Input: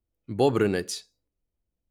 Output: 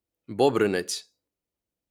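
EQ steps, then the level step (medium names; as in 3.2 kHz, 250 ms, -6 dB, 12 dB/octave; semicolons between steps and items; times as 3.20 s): high-pass 280 Hz 6 dB/octave; +2.5 dB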